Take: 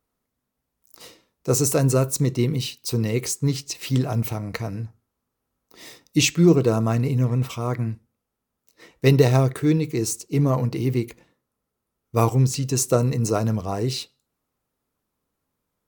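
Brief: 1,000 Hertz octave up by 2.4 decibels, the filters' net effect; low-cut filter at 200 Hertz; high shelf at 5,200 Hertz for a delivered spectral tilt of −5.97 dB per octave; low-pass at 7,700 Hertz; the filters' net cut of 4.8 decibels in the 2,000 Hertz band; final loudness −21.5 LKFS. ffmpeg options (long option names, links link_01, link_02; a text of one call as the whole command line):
ffmpeg -i in.wav -af "highpass=200,lowpass=7700,equalizer=frequency=1000:width_type=o:gain=5,equalizer=frequency=2000:width_type=o:gain=-6,highshelf=frequency=5200:gain=-8,volume=3.5dB" out.wav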